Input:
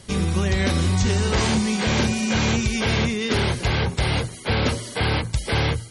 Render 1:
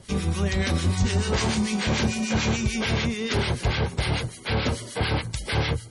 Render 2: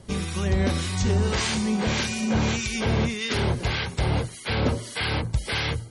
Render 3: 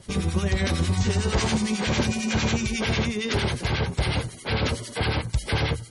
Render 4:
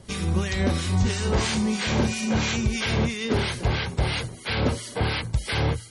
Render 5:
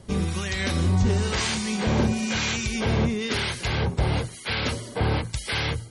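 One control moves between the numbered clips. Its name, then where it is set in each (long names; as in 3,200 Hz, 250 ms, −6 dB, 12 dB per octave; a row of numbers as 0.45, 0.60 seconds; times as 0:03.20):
two-band tremolo in antiphase, speed: 6.8, 1.7, 11, 3, 1 Hertz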